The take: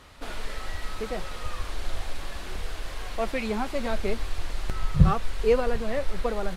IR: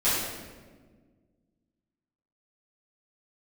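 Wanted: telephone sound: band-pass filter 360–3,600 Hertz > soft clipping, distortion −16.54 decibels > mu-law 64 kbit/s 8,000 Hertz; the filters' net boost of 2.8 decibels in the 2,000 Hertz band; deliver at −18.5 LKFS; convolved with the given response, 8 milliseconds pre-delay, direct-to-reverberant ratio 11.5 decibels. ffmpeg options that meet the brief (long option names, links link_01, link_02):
-filter_complex "[0:a]equalizer=frequency=2000:width_type=o:gain=4,asplit=2[link_01][link_02];[1:a]atrim=start_sample=2205,adelay=8[link_03];[link_02][link_03]afir=irnorm=-1:irlink=0,volume=-25dB[link_04];[link_01][link_04]amix=inputs=2:normalize=0,highpass=360,lowpass=3600,asoftclip=threshold=-18dB,volume=15dB" -ar 8000 -c:a pcm_mulaw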